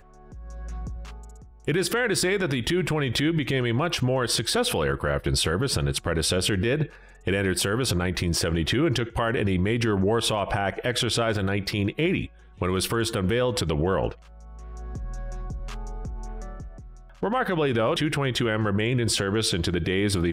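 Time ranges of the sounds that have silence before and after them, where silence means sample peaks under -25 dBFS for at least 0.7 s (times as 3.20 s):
1.68–14.12 s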